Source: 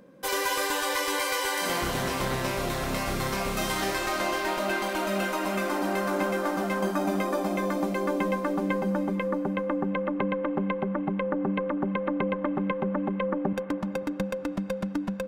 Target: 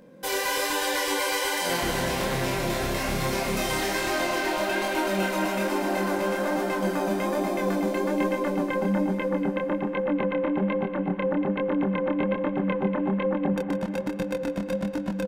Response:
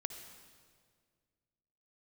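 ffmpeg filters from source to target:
-filter_complex "[0:a]equalizer=f=1200:t=o:w=0.25:g=-7.5,asplit=2[s0][s1];[s1]alimiter=limit=0.0668:level=0:latency=1,volume=1[s2];[s0][s2]amix=inputs=2:normalize=0,asettb=1/sr,asplit=3[s3][s4][s5];[s3]atrim=end=6.154[s6];[s4]atrim=start=6.15:end=7.79,asetpts=PTS-STARTPTS,afade=t=in:d=0.004:c=qsin,afade=t=out:st=1.636:d=0.004:c=qsin,asoftclip=type=hard:threshold=0.141[s7];[s5]atrim=start=7.786[s8];[s6][s7]acrossfade=d=0.004:c1=hsin:c2=qsin[s9];[s9][s8]acrossfade=d=0.004:c1=qsin:c2=hsin,flanger=delay=22.5:depth=6.3:speed=1.2,aecho=1:1:148.7|236.2:0.282|0.355"

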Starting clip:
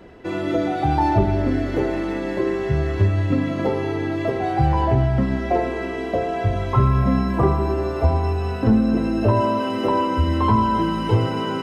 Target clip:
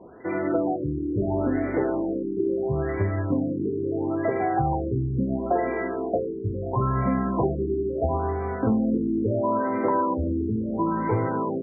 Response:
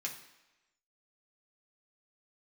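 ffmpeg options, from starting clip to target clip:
-af "highpass=f=210:p=1,acompressor=threshold=0.126:ratio=6,afftfilt=real='re*lt(b*sr/1024,440*pow(2400/440,0.5+0.5*sin(2*PI*0.74*pts/sr)))':imag='im*lt(b*sr/1024,440*pow(2400/440,0.5+0.5*sin(2*PI*0.74*pts/sr)))':win_size=1024:overlap=0.75"

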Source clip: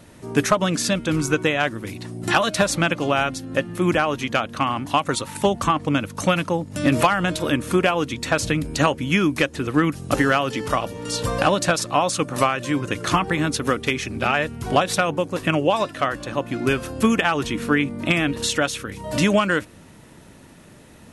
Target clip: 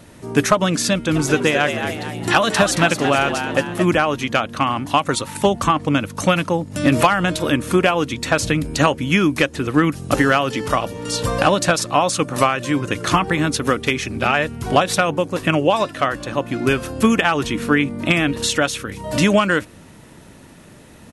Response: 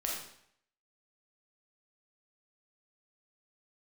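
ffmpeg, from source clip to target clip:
-filter_complex "[0:a]asplit=3[s0][s1][s2];[s0]afade=t=out:st=1.15:d=0.02[s3];[s1]asplit=6[s4][s5][s6][s7][s8][s9];[s5]adelay=223,afreqshift=88,volume=0.422[s10];[s6]adelay=446,afreqshift=176,volume=0.195[s11];[s7]adelay=669,afreqshift=264,volume=0.0891[s12];[s8]adelay=892,afreqshift=352,volume=0.0412[s13];[s9]adelay=1115,afreqshift=440,volume=0.0188[s14];[s4][s10][s11][s12][s13][s14]amix=inputs=6:normalize=0,afade=t=in:st=1.15:d=0.02,afade=t=out:st=3.84:d=0.02[s15];[s2]afade=t=in:st=3.84:d=0.02[s16];[s3][s15][s16]amix=inputs=3:normalize=0,volume=1.41"

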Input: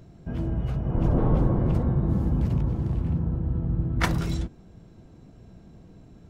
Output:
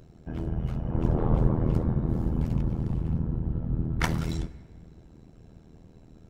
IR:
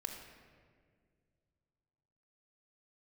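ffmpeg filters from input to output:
-filter_complex "[0:a]tremolo=f=80:d=0.919,asplit=2[s0][s1];[1:a]atrim=start_sample=2205,highshelf=f=5000:g=11[s2];[s1][s2]afir=irnorm=-1:irlink=0,volume=0.251[s3];[s0][s3]amix=inputs=2:normalize=0"

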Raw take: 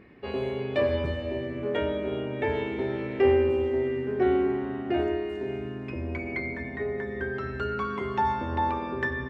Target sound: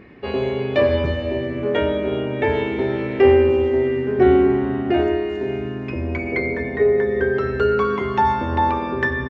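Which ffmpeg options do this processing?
-filter_complex "[0:a]asettb=1/sr,asplit=3[s0][s1][s2];[s0]atrim=end=4.184[s3];[s1]atrim=start=4.18:end=4.91,asetpts=PTS-STARTPTS,afade=t=in:d=0.004:c=qsin,afade=t=out:st=0.726:d=0.004:c=qsin,lowshelf=f=200:g=6.5[s4];[s2]atrim=start=4.906[s5];[s3][s4]acrossfade=d=0.004:c1=hsin:c2=qsin[s6];[s6][s5]acrossfade=d=0.004:c1=qsin:c2=hsin,aresample=16000,aresample=44100,asettb=1/sr,asplit=3[s7][s8][s9];[s7]atrim=end=6.324[s10];[s8]atrim=start=6.32:end=7.96,asetpts=PTS-STARTPTS,afade=t=in:d=0.004:c=qsin,afade=t=out:st=1.636:d=0.004:c=qsin,equalizer=f=460:w=4.3:g=14[s11];[s9]atrim=start=7.956[s12];[s10][s11]acrossfade=d=0.004:c1=hsin:c2=qsin[s13];[s13][s12]acrossfade=d=0.004:c1=qsin:c2=hsin,volume=2.51"

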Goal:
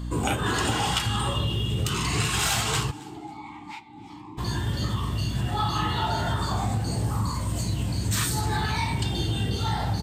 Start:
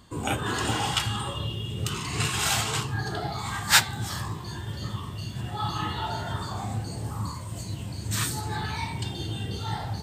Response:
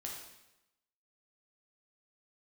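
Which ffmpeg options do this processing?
-filter_complex "[0:a]aeval=exprs='val(0)+0.0126*(sin(2*PI*60*n/s)+sin(2*PI*2*60*n/s)/2+sin(2*PI*3*60*n/s)/3+sin(2*PI*4*60*n/s)/4+sin(2*PI*5*60*n/s)/5)':c=same,acompressor=threshold=0.0355:ratio=4,asplit=3[s0][s1][s2];[s0]afade=t=out:st=2.9:d=0.02[s3];[s1]asplit=3[s4][s5][s6];[s4]bandpass=f=300:t=q:w=8,volume=1[s7];[s5]bandpass=f=870:t=q:w=8,volume=0.501[s8];[s6]bandpass=f=2240:t=q:w=8,volume=0.355[s9];[s7][s8][s9]amix=inputs=3:normalize=0,afade=t=in:st=2.9:d=0.02,afade=t=out:st=4.37:d=0.02[s10];[s2]afade=t=in:st=4.37:d=0.02[s11];[s3][s10][s11]amix=inputs=3:normalize=0,asoftclip=type=tanh:threshold=0.0891,asplit=2[s12][s13];[s13]aecho=0:1:271|542:0.0794|0.0262[s14];[s12][s14]amix=inputs=2:normalize=0,volume=2.37"

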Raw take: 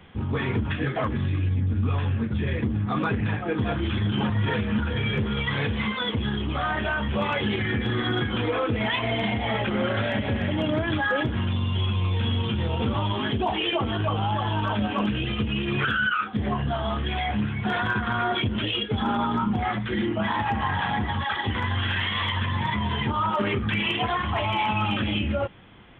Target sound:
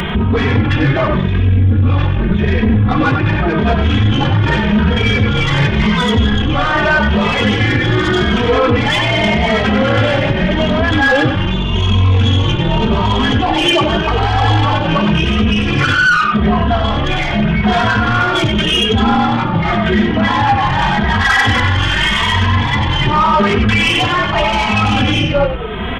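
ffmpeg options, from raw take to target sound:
-filter_complex "[0:a]asettb=1/sr,asplit=3[s0][s1][s2];[s0]atrim=end=5.604[s3];[s1]atrim=start=5.6:end=6.25,asetpts=PTS-STARTPTS,afade=t=in:d=0.004:c=qsin,afade=t=out:st=0.646:d=0.004:c=qsin,bass=f=250:g=4,treble=f=4000:g=-1[s4];[s2]atrim=start=6.246[s5];[s3][s4]acrossfade=d=0.004:c1=hsin:c2=qsin[s6];[s6][s5]acrossfade=d=0.004:c1=qsin:c2=hsin,asettb=1/sr,asplit=3[s7][s8][s9];[s7]atrim=end=14.024[s10];[s8]atrim=start=14.02:end=14.64,asetpts=PTS-STARTPTS,afade=t=in:d=0.004:c=qsin,afade=t=out:st=0.616:d=0.004:c=qsin,aecho=1:1:2.4:0.83,atrim=end_sample=27342[s11];[s9]atrim=start=14.636[s12];[s10][s11]acrossfade=d=0.004:c1=hsin:c2=qsin[s13];[s13][s12]acrossfade=d=0.004:c1=qsin:c2=hsin,asettb=1/sr,asplit=3[s14][s15][s16];[s14]atrim=end=21.114[s17];[s15]atrim=start=21.11:end=21.6,asetpts=PTS-STARTPTS,afade=t=in:d=0.004:c=qsin,afade=t=out:st=0.486:d=0.004:c=qsin,equalizer=f=1700:t=o:w=1.3:g=8[s18];[s16]atrim=start=21.596[s19];[s17][s18]acrossfade=d=0.004:c1=hsin:c2=qsin[s20];[s20][s19]acrossfade=d=0.004:c1=qsin:c2=hsin,asplit=2[s21][s22];[s22]asplit=4[s23][s24][s25][s26];[s23]adelay=95,afreqshift=-44,volume=0.501[s27];[s24]adelay=190,afreqshift=-88,volume=0.16[s28];[s25]adelay=285,afreqshift=-132,volume=0.0513[s29];[s26]adelay=380,afreqshift=-176,volume=0.0164[s30];[s27][s28][s29][s30]amix=inputs=4:normalize=0[s31];[s21][s31]amix=inputs=2:normalize=0,acompressor=mode=upward:threshold=0.0355:ratio=2.5,asoftclip=type=tanh:threshold=0.0794,alimiter=level_in=25.1:limit=0.891:release=50:level=0:latency=1,asplit=2[s32][s33];[s33]adelay=2.8,afreqshift=0.86[s34];[s32][s34]amix=inputs=2:normalize=1,volume=0.596"

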